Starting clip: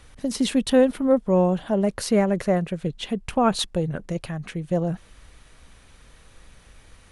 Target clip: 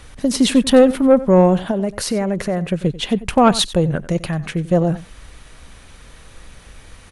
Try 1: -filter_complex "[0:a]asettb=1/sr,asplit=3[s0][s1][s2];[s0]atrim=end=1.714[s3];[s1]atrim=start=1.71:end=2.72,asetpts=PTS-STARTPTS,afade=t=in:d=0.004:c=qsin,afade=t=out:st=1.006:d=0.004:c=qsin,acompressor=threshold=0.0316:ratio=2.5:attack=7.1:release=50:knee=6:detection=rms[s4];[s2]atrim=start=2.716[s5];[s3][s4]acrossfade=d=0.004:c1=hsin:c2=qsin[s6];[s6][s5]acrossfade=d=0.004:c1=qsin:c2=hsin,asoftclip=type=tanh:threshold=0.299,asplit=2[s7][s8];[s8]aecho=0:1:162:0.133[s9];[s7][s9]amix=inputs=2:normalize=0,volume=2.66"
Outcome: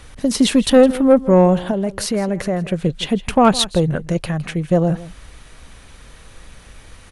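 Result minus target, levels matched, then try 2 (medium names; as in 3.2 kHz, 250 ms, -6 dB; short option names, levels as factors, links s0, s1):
echo 70 ms late
-filter_complex "[0:a]asettb=1/sr,asplit=3[s0][s1][s2];[s0]atrim=end=1.714[s3];[s1]atrim=start=1.71:end=2.72,asetpts=PTS-STARTPTS,afade=t=in:d=0.004:c=qsin,afade=t=out:st=1.006:d=0.004:c=qsin,acompressor=threshold=0.0316:ratio=2.5:attack=7.1:release=50:knee=6:detection=rms[s4];[s2]atrim=start=2.716[s5];[s3][s4]acrossfade=d=0.004:c1=hsin:c2=qsin[s6];[s6][s5]acrossfade=d=0.004:c1=qsin:c2=hsin,asoftclip=type=tanh:threshold=0.299,asplit=2[s7][s8];[s8]aecho=0:1:92:0.133[s9];[s7][s9]amix=inputs=2:normalize=0,volume=2.66"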